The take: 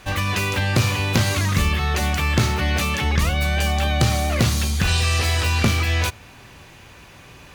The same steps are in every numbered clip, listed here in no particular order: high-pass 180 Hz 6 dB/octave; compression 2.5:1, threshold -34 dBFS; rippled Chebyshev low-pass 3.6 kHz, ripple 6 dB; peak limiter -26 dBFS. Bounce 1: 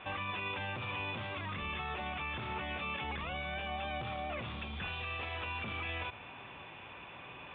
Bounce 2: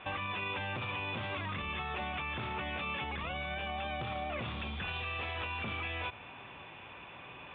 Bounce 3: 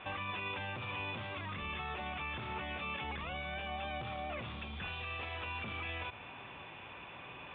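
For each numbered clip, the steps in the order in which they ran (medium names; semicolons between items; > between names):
high-pass > peak limiter > rippled Chebyshev low-pass > compression; rippled Chebyshev low-pass > peak limiter > high-pass > compression; high-pass > peak limiter > compression > rippled Chebyshev low-pass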